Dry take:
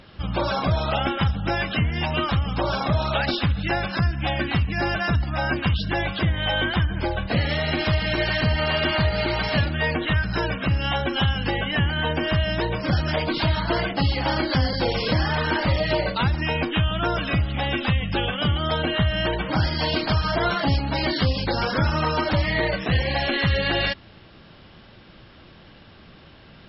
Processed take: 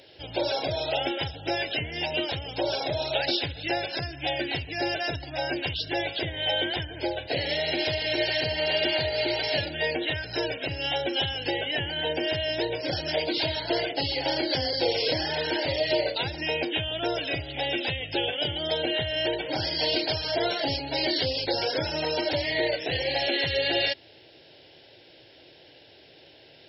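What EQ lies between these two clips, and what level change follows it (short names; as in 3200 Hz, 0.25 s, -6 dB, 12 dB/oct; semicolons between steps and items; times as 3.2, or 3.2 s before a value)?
HPF 180 Hz 12 dB/oct; high shelf 4900 Hz +6.5 dB; fixed phaser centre 490 Hz, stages 4; 0.0 dB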